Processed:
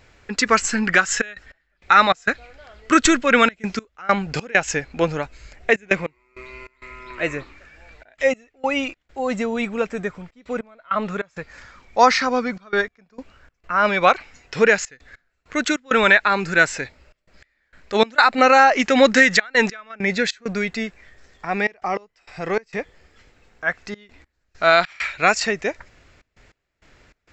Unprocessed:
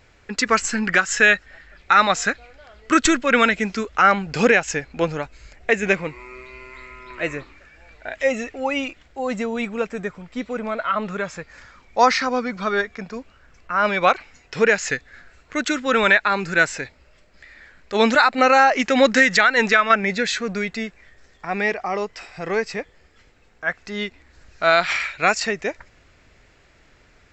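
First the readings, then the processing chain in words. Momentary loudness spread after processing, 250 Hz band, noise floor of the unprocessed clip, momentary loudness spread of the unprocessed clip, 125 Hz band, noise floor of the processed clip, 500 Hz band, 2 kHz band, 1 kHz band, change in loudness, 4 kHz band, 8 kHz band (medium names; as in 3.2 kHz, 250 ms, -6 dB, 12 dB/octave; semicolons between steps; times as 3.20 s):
16 LU, +0.5 dB, -55 dBFS, 17 LU, +0.5 dB, -71 dBFS, +0.5 dB, 0.0 dB, +0.5 dB, +0.5 dB, +0.5 dB, +0.5 dB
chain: trance gate "xxxxxxxx.x..xx." 99 bpm -24 dB; trim +1.5 dB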